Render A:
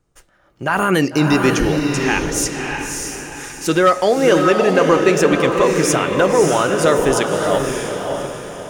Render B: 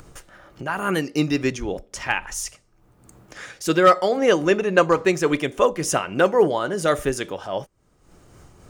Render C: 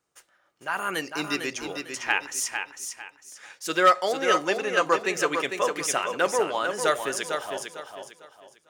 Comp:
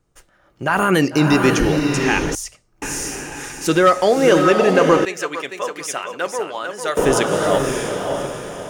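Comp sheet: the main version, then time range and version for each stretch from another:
A
2.35–2.82 from B
5.05–6.97 from C

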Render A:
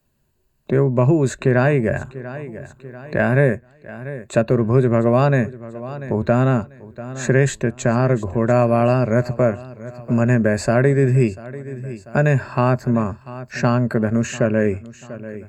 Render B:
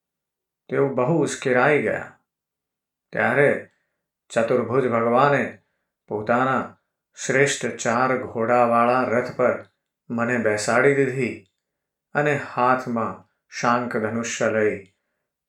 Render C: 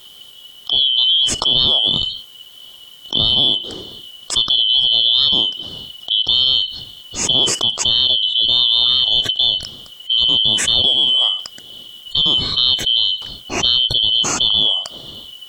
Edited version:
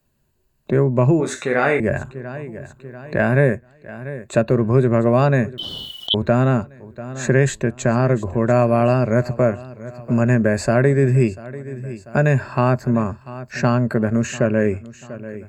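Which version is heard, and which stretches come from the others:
A
1.2–1.8 from B
5.58–6.14 from C

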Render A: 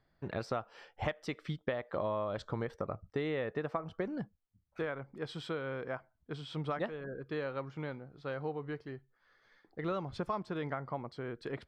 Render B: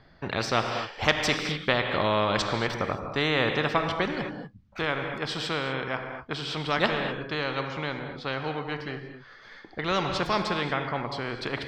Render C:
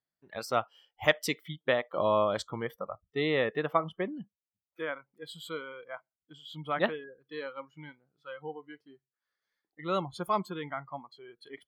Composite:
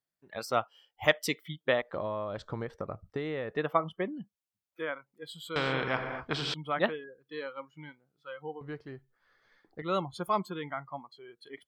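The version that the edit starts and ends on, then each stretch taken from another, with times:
C
1.82–3.57 from A
5.56–6.54 from B
8.61–9.82 from A

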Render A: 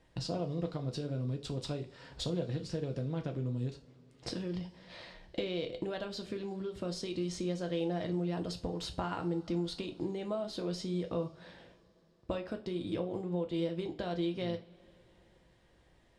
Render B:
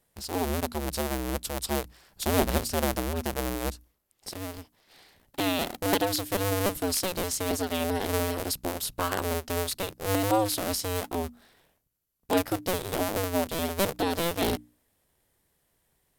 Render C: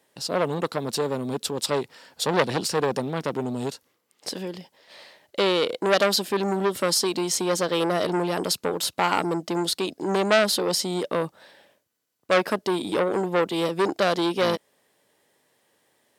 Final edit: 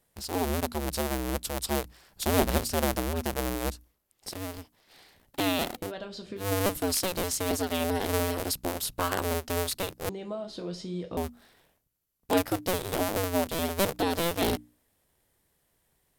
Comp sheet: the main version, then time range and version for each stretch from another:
B
5.84–6.44 from A, crossfade 0.16 s
10.09–11.17 from A
not used: C

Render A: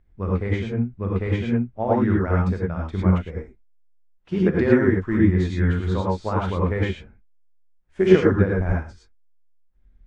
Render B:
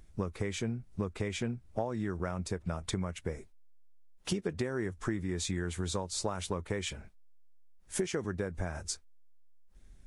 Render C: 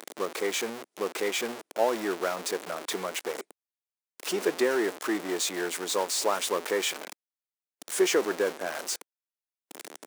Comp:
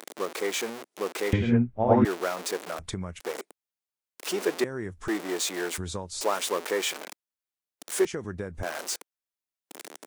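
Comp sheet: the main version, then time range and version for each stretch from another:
C
1.33–2.05 from A
2.79–3.2 from B
4.64–5.08 from B
5.78–6.21 from B
8.05–8.63 from B

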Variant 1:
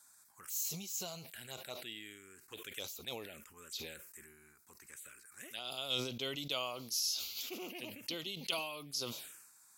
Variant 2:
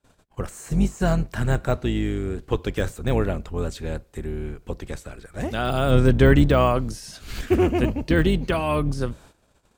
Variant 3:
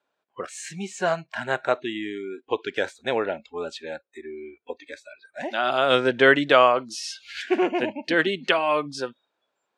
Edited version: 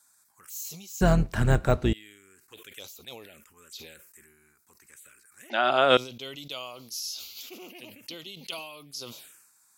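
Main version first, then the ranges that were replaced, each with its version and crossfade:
1
1.01–1.93 from 2
5.5–5.97 from 3

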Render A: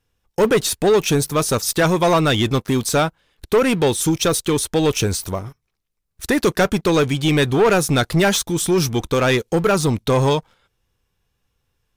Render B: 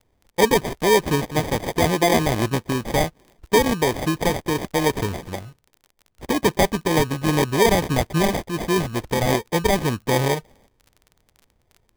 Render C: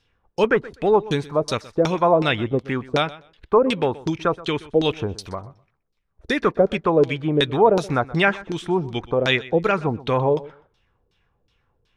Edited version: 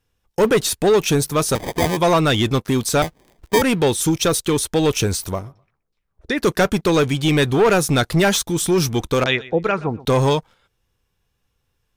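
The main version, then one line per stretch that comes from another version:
A
1.55–1.97 from B
3.02–3.62 from B
5.46–6.41 from C, crossfade 0.16 s
9.24–10.05 from C

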